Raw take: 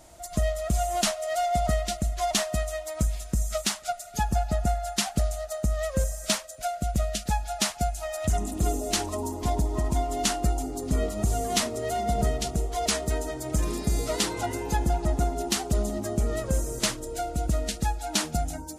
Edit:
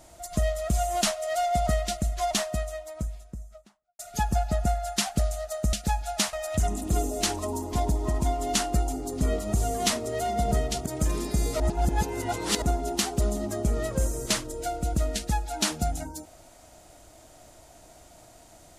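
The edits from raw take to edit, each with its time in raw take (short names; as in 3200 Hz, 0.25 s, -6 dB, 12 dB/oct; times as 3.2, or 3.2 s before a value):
2.06–3.99 studio fade out
5.73–7.15 cut
7.75–8.03 cut
12.56–13.39 cut
14.13–15.15 reverse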